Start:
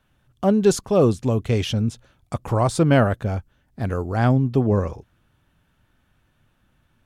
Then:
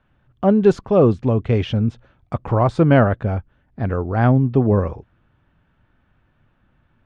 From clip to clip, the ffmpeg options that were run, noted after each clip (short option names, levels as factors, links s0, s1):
-af "lowpass=2300,volume=1.41"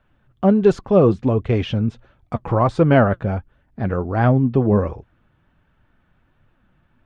-af "flanger=delay=1.4:depth=5:regen=59:speed=1.4:shape=triangular,volume=1.68"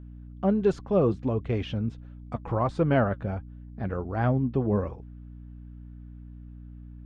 -af "aeval=exprs='val(0)+0.0224*(sin(2*PI*60*n/s)+sin(2*PI*2*60*n/s)/2+sin(2*PI*3*60*n/s)/3+sin(2*PI*4*60*n/s)/4+sin(2*PI*5*60*n/s)/5)':c=same,volume=0.355"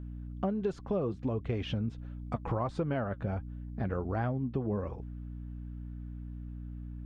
-af "acompressor=threshold=0.0282:ratio=6,volume=1.26"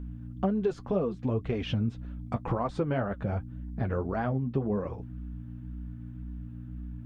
-af "flanger=delay=4.1:depth=5.3:regen=-37:speed=1.9:shape=sinusoidal,volume=2.24"